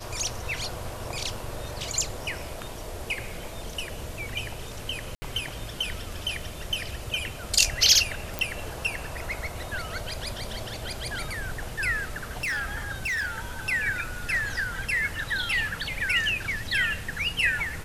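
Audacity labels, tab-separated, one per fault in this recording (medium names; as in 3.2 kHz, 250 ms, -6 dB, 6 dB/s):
5.150000	5.220000	dropout 70 ms
8.390000	8.390000	pop -11 dBFS
12.230000	13.600000	clipped -25.5 dBFS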